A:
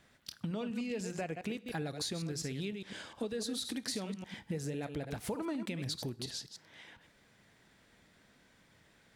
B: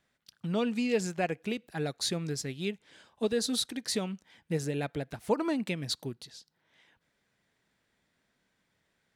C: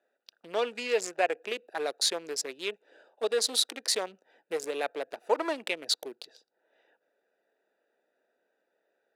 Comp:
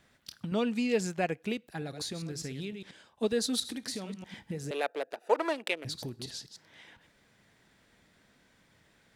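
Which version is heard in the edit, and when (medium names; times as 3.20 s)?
A
0.52–1.76 s: from B
2.91–3.60 s: from B
4.71–5.85 s: from C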